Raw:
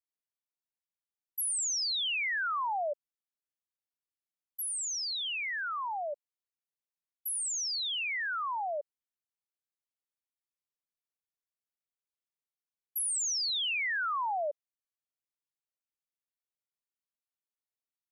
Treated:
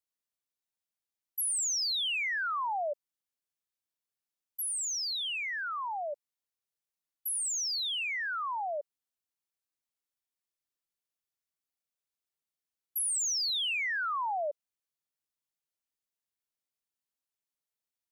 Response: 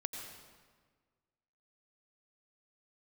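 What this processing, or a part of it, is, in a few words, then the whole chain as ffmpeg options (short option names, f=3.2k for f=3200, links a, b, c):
exciter from parts: -filter_complex "[0:a]asplit=2[a][b];[b]highpass=2.6k,asoftclip=type=tanh:threshold=-39dB,volume=-10dB[c];[a][c]amix=inputs=2:normalize=0"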